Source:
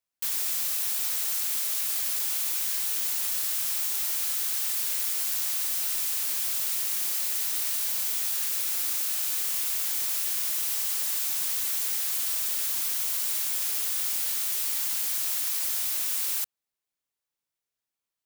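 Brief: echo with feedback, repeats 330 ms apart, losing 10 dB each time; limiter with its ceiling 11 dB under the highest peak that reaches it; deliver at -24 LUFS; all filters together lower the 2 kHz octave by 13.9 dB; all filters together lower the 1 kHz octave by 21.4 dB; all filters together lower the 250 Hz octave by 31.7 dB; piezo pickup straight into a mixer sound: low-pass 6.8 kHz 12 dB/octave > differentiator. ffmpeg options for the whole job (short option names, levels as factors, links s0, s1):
-af "equalizer=f=250:t=o:g=-5,equalizer=f=1000:t=o:g=-5.5,equalizer=f=2000:t=o:g=-3.5,alimiter=level_in=1.26:limit=0.0631:level=0:latency=1,volume=0.794,lowpass=6800,aderivative,aecho=1:1:330|660|990|1320:0.316|0.101|0.0324|0.0104,volume=8.41"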